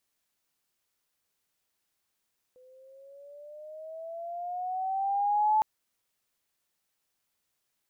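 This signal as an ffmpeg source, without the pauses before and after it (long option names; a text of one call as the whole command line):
ffmpeg -f lavfi -i "aevalsrc='pow(10,(-20+33.5*(t/3.06-1))/20)*sin(2*PI*503*3.06/(9.5*log(2)/12)*(exp(9.5*log(2)/12*t/3.06)-1))':duration=3.06:sample_rate=44100" out.wav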